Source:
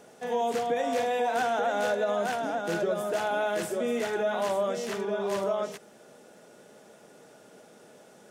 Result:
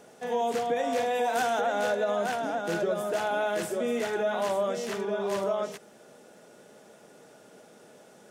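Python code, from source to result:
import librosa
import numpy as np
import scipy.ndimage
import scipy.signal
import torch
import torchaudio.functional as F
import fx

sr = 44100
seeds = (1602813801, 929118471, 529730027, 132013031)

y = fx.high_shelf(x, sr, hz=fx.line((1.14, 7800.0), (1.6, 4500.0)), db=8.5, at=(1.14, 1.6), fade=0.02)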